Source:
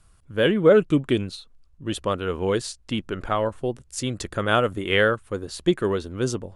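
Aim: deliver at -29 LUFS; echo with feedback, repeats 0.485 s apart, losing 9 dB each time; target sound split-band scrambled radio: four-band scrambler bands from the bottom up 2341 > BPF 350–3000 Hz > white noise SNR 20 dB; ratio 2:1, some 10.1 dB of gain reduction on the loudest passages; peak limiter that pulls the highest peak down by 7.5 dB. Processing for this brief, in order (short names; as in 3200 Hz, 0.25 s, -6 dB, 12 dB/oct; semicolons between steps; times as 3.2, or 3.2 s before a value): compressor 2:1, threshold -29 dBFS; limiter -20.5 dBFS; feedback echo 0.485 s, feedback 35%, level -9 dB; four-band scrambler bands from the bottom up 2341; BPF 350–3000 Hz; white noise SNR 20 dB; gain +8 dB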